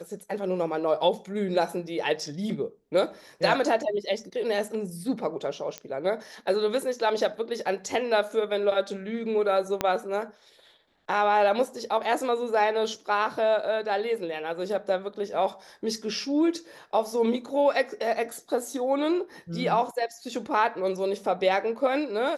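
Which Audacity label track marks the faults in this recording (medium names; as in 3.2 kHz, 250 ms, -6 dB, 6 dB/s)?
5.780000	5.780000	pop -18 dBFS
9.810000	9.810000	pop -10 dBFS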